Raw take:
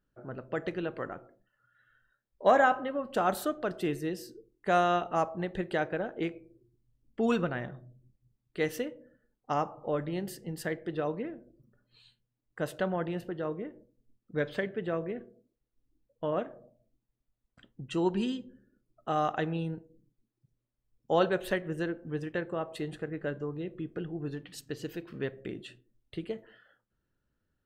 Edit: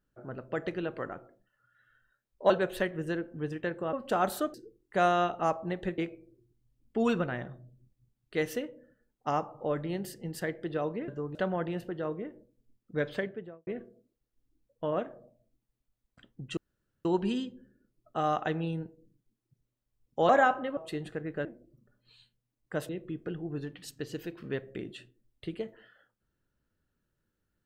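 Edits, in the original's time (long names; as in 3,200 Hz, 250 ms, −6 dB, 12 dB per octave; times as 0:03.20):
0:02.50–0:02.98: swap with 0:21.21–0:22.64
0:03.59–0:04.26: remove
0:05.70–0:06.21: remove
0:11.31–0:12.75: swap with 0:23.32–0:23.59
0:14.53–0:15.07: fade out and dull
0:17.97: splice in room tone 0.48 s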